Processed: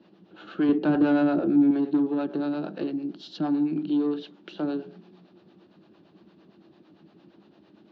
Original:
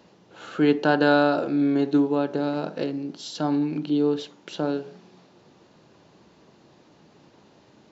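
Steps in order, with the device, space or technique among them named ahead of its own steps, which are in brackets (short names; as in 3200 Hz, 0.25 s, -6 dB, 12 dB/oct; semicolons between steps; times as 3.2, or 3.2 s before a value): guitar amplifier with harmonic tremolo (harmonic tremolo 8.8 Hz, depth 70%, crossover 410 Hz; soft clip -21.5 dBFS, distortion -12 dB; speaker cabinet 91–4100 Hz, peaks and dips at 130 Hz -6 dB, 190 Hz +8 dB, 330 Hz +9 dB, 490 Hz -5 dB, 950 Hz -5 dB, 2100 Hz -5 dB); 0.69–1.71 tilt -2.5 dB/oct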